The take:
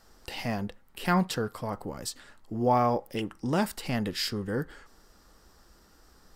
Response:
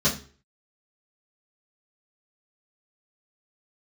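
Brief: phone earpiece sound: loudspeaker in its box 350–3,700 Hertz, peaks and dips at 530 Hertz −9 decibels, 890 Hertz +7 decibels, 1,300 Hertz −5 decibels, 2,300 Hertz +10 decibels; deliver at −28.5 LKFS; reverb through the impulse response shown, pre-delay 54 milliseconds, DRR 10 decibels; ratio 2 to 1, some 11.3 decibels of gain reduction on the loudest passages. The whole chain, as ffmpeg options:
-filter_complex "[0:a]acompressor=threshold=-41dB:ratio=2,asplit=2[link_01][link_02];[1:a]atrim=start_sample=2205,adelay=54[link_03];[link_02][link_03]afir=irnorm=-1:irlink=0,volume=-23dB[link_04];[link_01][link_04]amix=inputs=2:normalize=0,highpass=350,equalizer=frequency=530:width_type=q:width=4:gain=-9,equalizer=frequency=890:width_type=q:width=4:gain=7,equalizer=frequency=1300:width_type=q:width=4:gain=-5,equalizer=frequency=2300:width_type=q:width=4:gain=10,lowpass=frequency=3700:width=0.5412,lowpass=frequency=3700:width=1.3066,volume=12dB"

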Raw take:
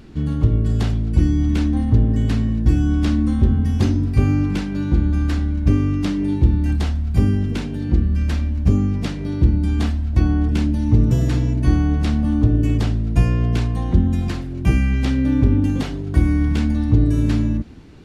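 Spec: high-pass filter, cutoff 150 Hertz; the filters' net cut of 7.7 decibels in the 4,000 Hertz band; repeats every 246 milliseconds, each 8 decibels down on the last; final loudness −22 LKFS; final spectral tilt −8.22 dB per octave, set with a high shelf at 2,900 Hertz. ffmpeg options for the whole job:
ffmpeg -i in.wav -af "highpass=150,highshelf=frequency=2900:gain=-6,equalizer=frequency=4000:width_type=o:gain=-5.5,aecho=1:1:246|492|738|984|1230:0.398|0.159|0.0637|0.0255|0.0102,volume=1.5dB" out.wav

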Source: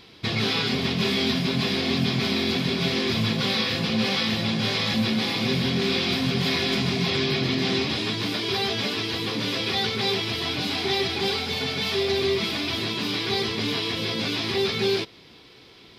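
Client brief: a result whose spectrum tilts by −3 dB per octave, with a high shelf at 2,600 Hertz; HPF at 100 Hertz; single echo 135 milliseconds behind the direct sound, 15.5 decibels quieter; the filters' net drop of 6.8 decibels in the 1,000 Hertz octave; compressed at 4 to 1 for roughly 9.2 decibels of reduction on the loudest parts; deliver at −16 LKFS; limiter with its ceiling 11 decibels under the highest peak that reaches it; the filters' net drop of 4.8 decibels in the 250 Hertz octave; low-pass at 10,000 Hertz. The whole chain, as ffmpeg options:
ffmpeg -i in.wav -af "highpass=100,lowpass=10000,equalizer=frequency=250:width_type=o:gain=-5.5,equalizer=frequency=1000:width_type=o:gain=-8,highshelf=frequency=2600:gain=-6,acompressor=threshold=-35dB:ratio=4,alimiter=level_in=10dB:limit=-24dB:level=0:latency=1,volume=-10dB,aecho=1:1:135:0.168,volume=25.5dB" out.wav

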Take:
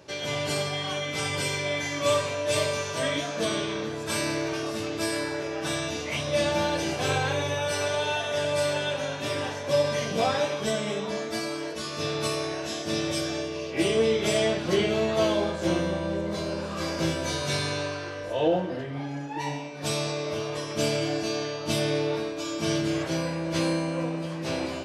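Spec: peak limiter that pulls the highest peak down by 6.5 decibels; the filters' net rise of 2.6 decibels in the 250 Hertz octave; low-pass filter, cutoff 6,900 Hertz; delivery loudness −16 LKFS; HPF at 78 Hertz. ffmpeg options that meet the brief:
ffmpeg -i in.wav -af "highpass=78,lowpass=6900,equalizer=frequency=250:width_type=o:gain=4,volume=12dB,alimiter=limit=-5.5dB:level=0:latency=1" out.wav

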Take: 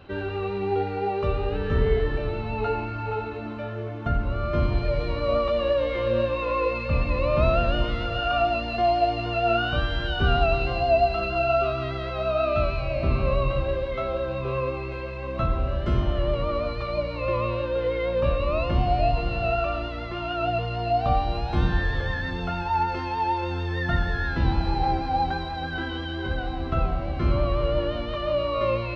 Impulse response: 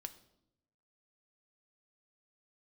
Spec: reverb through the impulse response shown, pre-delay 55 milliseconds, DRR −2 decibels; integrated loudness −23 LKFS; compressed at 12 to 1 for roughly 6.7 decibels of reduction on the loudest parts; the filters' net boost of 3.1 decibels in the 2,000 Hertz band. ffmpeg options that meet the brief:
-filter_complex "[0:a]equalizer=frequency=2000:width_type=o:gain=4.5,acompressor=threshold=-22dB:ratio=12,asplit=2[link_01][link_02];[1:a]atrim=start_sample=2205,adelay=55[link_03];[link_02][link_03]afir=irnorm=-1:irlink=0,volume=6dB[link_04];[link_01][link_04]amix=inputs=2:normalize=0,volume=1dB"

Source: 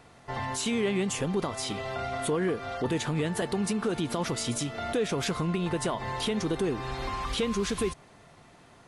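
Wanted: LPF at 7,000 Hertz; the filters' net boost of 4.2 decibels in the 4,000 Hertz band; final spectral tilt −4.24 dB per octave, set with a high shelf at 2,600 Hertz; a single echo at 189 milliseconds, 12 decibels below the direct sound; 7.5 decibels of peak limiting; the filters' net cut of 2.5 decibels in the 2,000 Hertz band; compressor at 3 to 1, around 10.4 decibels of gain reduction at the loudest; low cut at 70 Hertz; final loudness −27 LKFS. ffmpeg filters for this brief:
ffmpeg -i in.wav -af "highpass=70,lowpass=7000,equalizer=frequency=2000:width_type=o:gain=-6.5,highshelf=frequency=2600:gain=5,equalizer=frequency=4000:width_type=o:gain=3.5,acompressor=threshold=-39dB:ratio=3,alimiter=level_in=9.5dB:limit=-24dB:level=0:latency=1,volume=-9.5dB,aecho=1:1:189:0.251,volume=14.5dB" out.wav

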